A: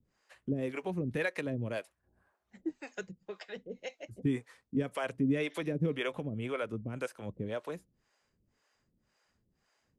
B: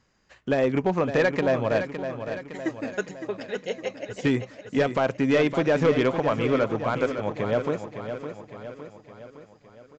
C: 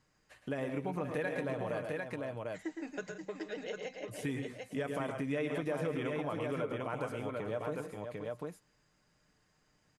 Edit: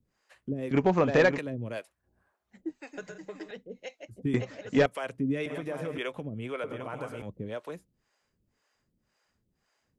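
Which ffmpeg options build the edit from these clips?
-filter_complex "[1:a]asplit=2[a][b];[2:a]asplit=3[c][d][e];[0:a]asplit=6[f][g][h][i][j][k];[f]atrim=end=0.712[l];[a]atrim=start=0.708:end=1.382[m];[g]atrim=start=1.378:end=2.932[n];[c]atrim=start=2.928:end=3.512[o];[h]atrim=start=3.508:end=4.342[p];[b]atrim=start=4.338:end=4.862[q];[i]atrim=start=4.858:end=5.462[r];[d]atrim=start=5.458:end=5.982[s];[j]atrim=start=5.978:end=6.642[t];[e]atrim=start=6.638:end=7.222[u];[k]atrim=start=7.218[v];[l][m]acrossfade=d=0.004:c1=hsin:c2=hsin[w];[w][n]acrossfade=d=0.004:c1=hsin:c2=hsin[x];[x][o]acrossfade=d=0.004:c1=hsin:c2=hsin[y];[y][p]acrossfade=d=0.004:c1=hsin:c2=hsin[z];[z][q]acrossfade=d=0.004:c1=hsin:c2=hsin[aa];[aa][r]acrossfade=d=0.004:c1=hsin:c2=hsin[ab];[ab][s]acrossfade=d=0.004:c1=hsin:c2=hsin[ac];[ac][t]acrossfade=d=0.004:c1=hsin:c2=hsin[ad];[ad][u]acrossfade=d=0.004:c1=hsin:c2=hsin[ae];[ae][v]acrossfade=d=0.004:c1=hsin:c2=hsin"

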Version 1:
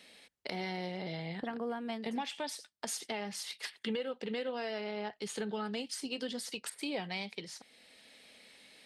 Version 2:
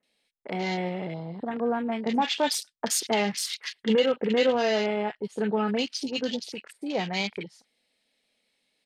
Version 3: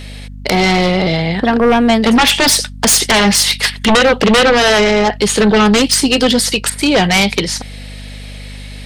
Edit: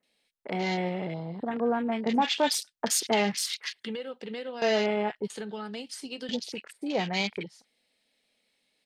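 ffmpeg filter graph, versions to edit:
-filter_complex "[0:a]asplit=2[a][b];[1:a]asplit=3[c][d][e];[c]atrim=end=3.802[f];[a]atrim=start=3.798:end=4.622[g];[d]atrim=start=4.618:end=5.302[h];[b]atrim=start=5.298:end=6.292[i];[e]atrim=start=6.288[j];[f][g]acrossfade=d=0.004:c1=hsin:c2=hsin[k];[k][h]acrossfade=d=0.004:c1=hsin:c2=hsin[l];[l][i]acrossfade=d=0.004:c1=hsin:c2=hsin[m];[m][j]acrossfade=d=0.004:c1=hsin:c2=hsin"

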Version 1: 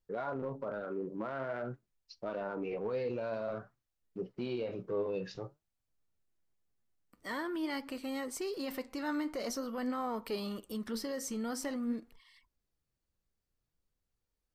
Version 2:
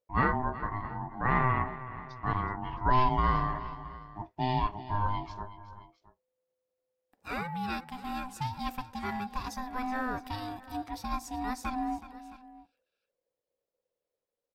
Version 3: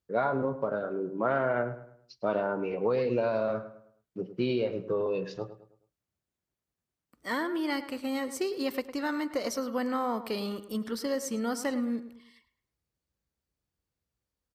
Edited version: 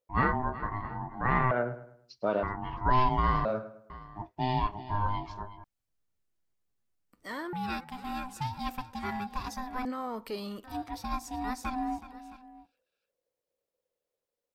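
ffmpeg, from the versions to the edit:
-filter_complex "[2:a]asplit=2[a][b];[0:a]asplit=2[c][d];[1:a]asplit=5[e][f][g][h][i];[e]atrim=end=1.512[j];[a]atrim=start=1.508:end=2.432[k];[f]atrim=start=2.428:end=3.452[l];[b]atrim=start=3.448:end=3.902[m];[g]atrim=start=3.898:end=5.642[n];[c]atrim=start=5.638:end=7.532[o];[h]atrim=start=7.528:end=9.852[p];[d]atrim=start=9.848:end=10.642[q];[i]atrim=start=10.638[r];[j][k]acrossfade=d=0.004:c1=hsin:c2=hsin[s];[s][l]acrossfade=d=0.004:c1=hsin:c2=hsin[t];[t][m]acrossfade=d=0.004:c1=hsin:c2=hsin[u];[u][n]acrossfade=d=0.004:c1=hsin:c2=hsin[v];[v][o]acrossfade=d=0.004:c1=hsin:c2=hsin[w];[w][p]acrossfade=d=0.004:c1=hsin:c2=hsin[x];[x][q]acrossfade=d=0.004:c1=hsin:c2=hsin[y];[y][r]acrossfade=d=0.004:c1=hsin:c2=hsin"

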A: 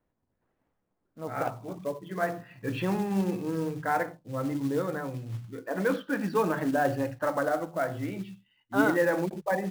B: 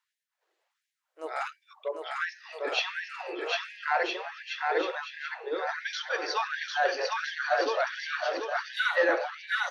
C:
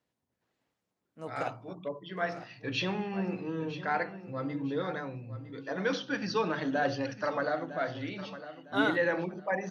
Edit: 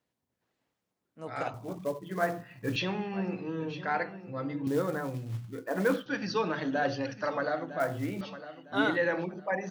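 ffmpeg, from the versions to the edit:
-filter_complex "[0:a]asplit=3[a][b][c];[2:a]asplit=4[d][e][f][g];[d]atrim=end=1.542[h];[a]atrim=start=1.538:end=2.762[i];[e]atrim=start=2.758:end=4.672[j];[b]atrim=start=4.668:end=6.062[k];[f]atrim=start=6.058:end=7.802[l];[c]atrim=start=7.798:end=8.212[m];[g]atrim=start=8.208[n];[h][i]acrossfade=d=0.004:c1=hsin:c2=hsin[o];[o][j]acrossfade=d=0.004:c1=hsin:c2=hsin[p];[p][k]acrossfade=d=0.004:c1=hsin:c2=hsin[q];[q][l]acrossfade=d=0.004:c1=hsin:c2=hsin[r];[r][m]acrossfade=d=0.004:c1=hsin:c2=hsin[s];[s][n]acrossfade=d=0.004:c1=hsin:c2=hsin"

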